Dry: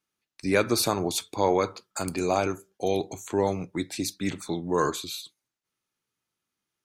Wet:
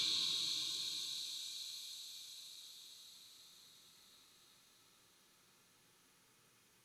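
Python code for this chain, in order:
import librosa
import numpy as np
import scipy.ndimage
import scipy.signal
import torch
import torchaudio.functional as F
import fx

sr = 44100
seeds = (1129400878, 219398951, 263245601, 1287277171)

y = fx.echo_wet_highpass(x, sr, ms=134, feedback_pct=34, hz=2900.0, wet_db=-14.0)
y = fx.env_lowpass_down(y, sr, base_hz=330.0, full_db=-24.5)
y = fx.paulstretch(y, sr, seeds[0], factor=8.9, window_s=0.5, from_s=5.32)
y = y * 10.0 ** (14.5 / 20.0)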